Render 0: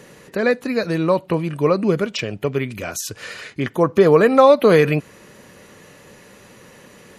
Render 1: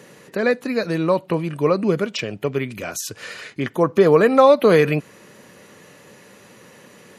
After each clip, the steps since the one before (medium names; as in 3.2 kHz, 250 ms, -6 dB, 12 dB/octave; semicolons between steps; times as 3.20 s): high-pass 110 Hz; trim -1 dB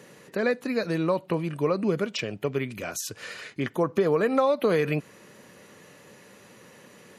compression 4:1, threshold -15 dBFS, peak gain reduction 7 dB; trim -4.5 dB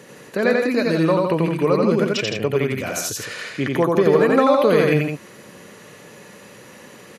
loudspeakers at several distances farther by 30 m -2 dB, 56 m -6 dB; trim +5.5 dB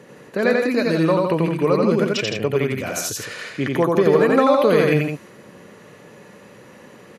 tape noise reduction on one side only decoder only